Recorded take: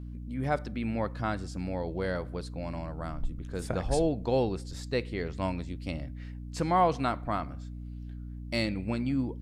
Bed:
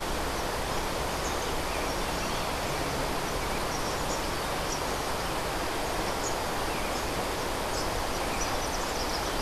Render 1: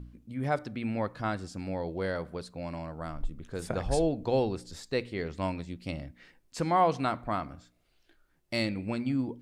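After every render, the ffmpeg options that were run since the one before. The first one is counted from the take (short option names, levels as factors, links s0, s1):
-af "bandreject=f=60:t=h:w=4,bandreject=f=120:t=h:w=4,bandreject=f=180:t=h:w=4,bandreject=f=240:t=h:w=4,bandreject=f=300:t=h:w=4"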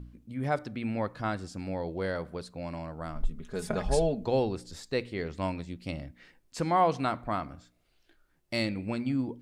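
-filter_complex "[0:a]asettb=1/sr,asplit=3[s0][s1][s2];[s0]atrim=end=3.154[s3];[s1]atrim=start=3.15:end=4.27,asetpts=PTS-STARTPTS,afade=t=in:d=0.004:c=qsin,afade=t=out:st=1.116:d=0.004:c=qsin,aecho=1:1:4.8:0.69,atrim=end_sample=49392[s4];[s2]atrim=start=4.266[s5];[s3][s4]acrossfade=d=0.004:c1=hsin:c2=qsin[s6];[s6][s5]acrossfade=d=0.004:c1=qsin:c2=hsin"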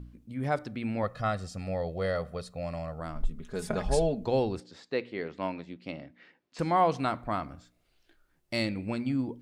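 -filter_complex "[0:a]asettb=1/sr,asplit=3[s0][s1][s2];[s0]atrim=end=1.034[s3];[s1]atrim=start=1.03:end=3,asetpts=PTS-STARTPTS,afade=t=in:d=0.004:c=qsin,afade=t=out:st=1.966:d=0.004:c=qsin,aecho=1:1:1.6:0.69,atrim=end_sample=86877[s4];[s2]atrim=start=2.996[s5];[s3][s4]acrossfade=d=0.004:c1=hsin:c2=qsin[s6];[s6][s5]acrossfade=d=0.004:c1=qsin:c2=hsin,asettb=1/sr,asplit=3[s7][s8][s9];[s7]atrim=end=4.604[s10];[s8]atrim=start=4.6:end=6.59,asetpts=PTS-STARTPTS,afade=t=in:d=0.004:c=qsin,afade=t=out:st=1.986:d=0.004:c=qsin,highpass=210,lowpass=3500[s11];[s9]atrim=start=6.586[s12];[s10][s11]acrossfade=d=0.004:c1=hsin:c2=qsin[s13];[s13][s12]acrossfade=d=0.004:c1=qsin:c2=hsin"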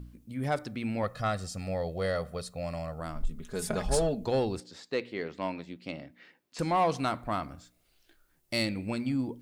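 -af "asoftclip=type=tanh:threshold=0.126,crystalizer=i=1.5:c=0"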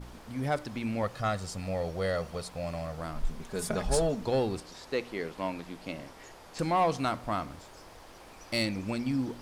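-filter_complex "[1:a]volume=0.0944[s0];[0:a][s0]amix=inputs=2:normalize=0"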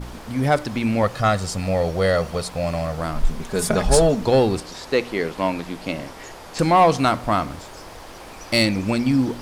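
-af "volume=3.76"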